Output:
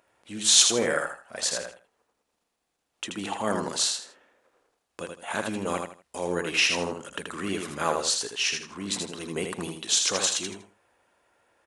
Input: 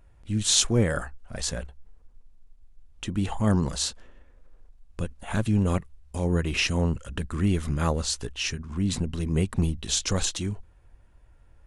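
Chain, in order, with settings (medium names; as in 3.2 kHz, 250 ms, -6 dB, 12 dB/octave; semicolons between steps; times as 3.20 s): high-pass 440 Hz 12 dB/octave; feedback delay 80 ms, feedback 26%, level -5 dB; trim +3 dB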